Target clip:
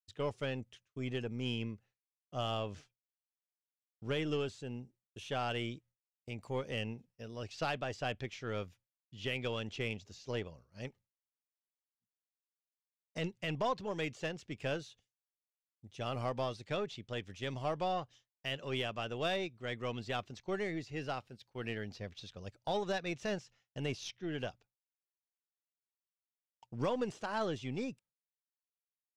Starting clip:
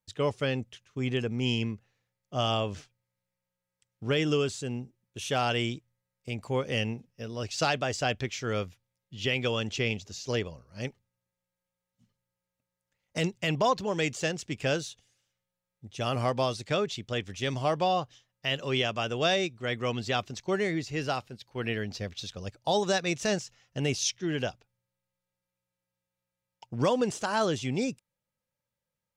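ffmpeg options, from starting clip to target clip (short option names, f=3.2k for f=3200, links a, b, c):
-filter_complex "[0:a]agate=range=-33dB:threshold=-50dB:ratio=3:detection=peak,acrossover=split=4300[a][b];[b]acompressor=threshold=-54dB:ratio=4[c];[a][c]amix=inputs=2:normalize=0,aeval=exprs='0.178*(cos(1*acos(clip(val(0)/0.178,-1,1)))-cos(1*PI/2))+0.00794*(cos(6*acos(clip(val(0)/0.178,-1,1)))-cos(6*PI/2))':c=same,volume=-8.5dB"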